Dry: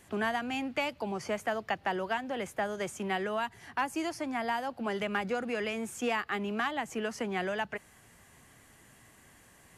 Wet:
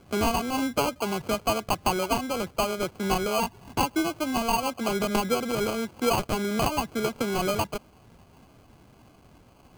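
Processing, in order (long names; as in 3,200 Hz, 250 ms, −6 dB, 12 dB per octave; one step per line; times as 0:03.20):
adaptive Wiener filter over 15 samples
phase shifter 1.6 Hz, delay 4 ms, feedback 21%
decimation without filtering 24×
level +7 dB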